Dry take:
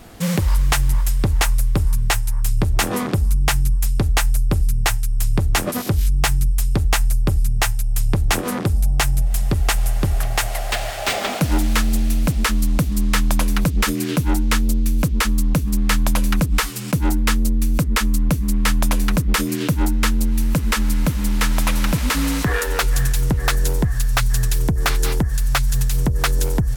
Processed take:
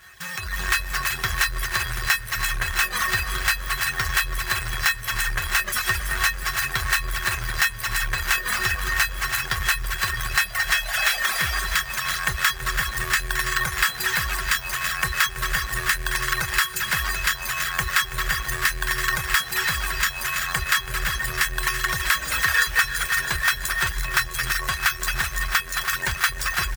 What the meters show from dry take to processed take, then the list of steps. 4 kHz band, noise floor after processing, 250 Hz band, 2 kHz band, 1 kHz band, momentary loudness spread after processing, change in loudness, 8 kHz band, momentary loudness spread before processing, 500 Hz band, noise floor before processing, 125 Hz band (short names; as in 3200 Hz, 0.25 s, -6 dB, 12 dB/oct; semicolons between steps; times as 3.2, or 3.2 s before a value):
+1.5 dB, -34 dBFS, -20.5 dB, +6.5 dB, -0.5 dB, 4 LU, -2.5 dB, -1.0 dB, 2 LU, -11.5 dB, -24 dBFS, -13.5 dB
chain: half-waves squared off; HPF 63 Hz 12 dB/oct; doubler 26 ms -11.5 dB; in parallel at +0.5 dB: limiter -12.5 dBFS, peak gain reduction 9.5 dB; on the sum: resonator 370 Hz, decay 0.22 s, harmonics odd, mix 90%; tapped delay 0.218/0.38 s -9/-11 dB; reverb removal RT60 1.8 s; passive tone stack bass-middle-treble 10-0-10; on a send: feedback echo 0.329 s, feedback 58%, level -12 dB; on the sum: compressor 4:1, threshold -39 dBFS, peak gain reduction 11 dB; bell 1600 Hz +14.5 dB 0.75 oct; AGC gain up to 11.5 dB; gain +4 dB